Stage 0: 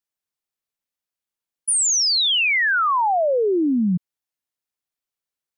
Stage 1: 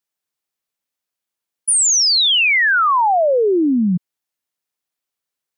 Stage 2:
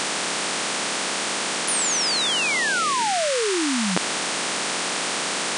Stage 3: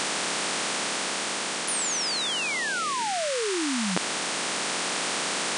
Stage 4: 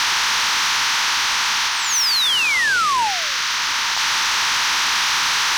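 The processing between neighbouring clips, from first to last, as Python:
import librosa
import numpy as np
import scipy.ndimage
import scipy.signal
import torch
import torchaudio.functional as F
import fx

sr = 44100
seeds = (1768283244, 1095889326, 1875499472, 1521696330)

y1 = fx.low_shelf(x, sr, hz=76.0, db=-10.0)
y1 = y1 * librosa.db_to_amplitude(4.5)
y2 = fx.bin_compress(y1, sr, power=0.2)
y2 = y2 * librosa.db_to_amplitude(-11.5)
y3 = fx.rider(y2, sr, range_db=10, speed_s=2.0)
y3 = y3 * librosa.db_to_amplitude(-4.5)
y4 = y3 + 0.5 * 10.0 ** (-24.5 / 20.0) * np.sign(y3)
y4 = scipy.signal.sosfilt(scipy.signal.cheby1(4, 1.0, [900.0, 6100.0], 'bandpass', fs=sr, output='sos'), y4)
y4 = fx.leveller(y4, sr, passes=3)
y4 = y4 * librosa.db_to_amplitude(-1.5)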